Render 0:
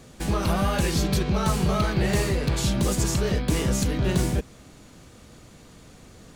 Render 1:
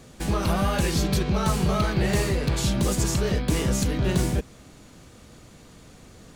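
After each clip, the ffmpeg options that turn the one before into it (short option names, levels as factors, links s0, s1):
-af anull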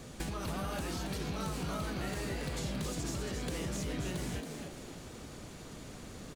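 -filter_complex "[0:a]alimiter=limit=0.112:level=0:latency=1:release=126,acrossover=split=1100|7400[s0][s1][s2];[s0]acompressor=threshold=0.0126:ratio=4[s3];[s1]acompressor=threshold=0.00501:ratio=4[s4];[s2]acompressor=threshold=0.002:ratio=4[s5];[s3][s4][s5]amix=inputs=3:normalize=0,asplit=2[s6][s7];[s7]asplit=5[s8][s9][s10][s11][s12];[s8]adelay=275,afreqshift=100,volume=0.501[s13];[s9]adelay=550,afreqshift=200,volume=0.216[s14];[s10]adelay=825,afreqshift=300,volume=0.0923[s15];[s11]adelay=1100,afreqshift=400,volume=0.0398[s16];[s12]adelay=1375,afreqshift=500,volume=0.0172[s17];[s13][s14][s15][s16][s17]amix=inputs=5:normalize=0[s18];[s6][s18]amix=inputs=2:normalize=0"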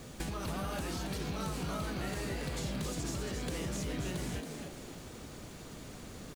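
-af "acrusher=bits=9:mix=0:aa=0.000001"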